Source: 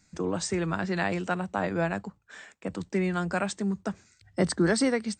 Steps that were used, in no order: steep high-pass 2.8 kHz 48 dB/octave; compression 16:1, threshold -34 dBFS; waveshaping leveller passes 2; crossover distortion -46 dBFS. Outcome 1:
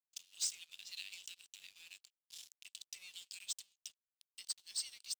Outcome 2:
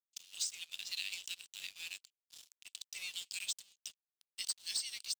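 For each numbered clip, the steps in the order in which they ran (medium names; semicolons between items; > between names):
crossover distortion > compression > steep high-pass > waveshaping leveller; crossover distortion > steep high-pass > waveshaping leveller > compression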